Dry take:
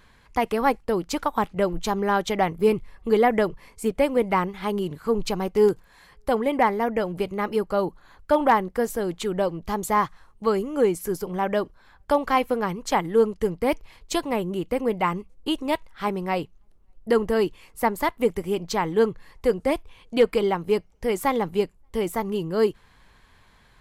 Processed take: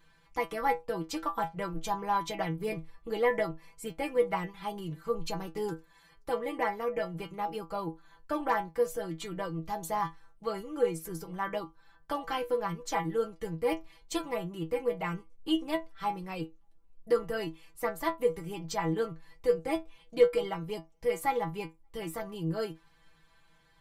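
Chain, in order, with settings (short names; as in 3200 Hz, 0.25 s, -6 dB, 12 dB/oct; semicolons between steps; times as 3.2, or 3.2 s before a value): metallic resonator 160 Hz, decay 0.21 s, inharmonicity 0.002; gain +2.5 dB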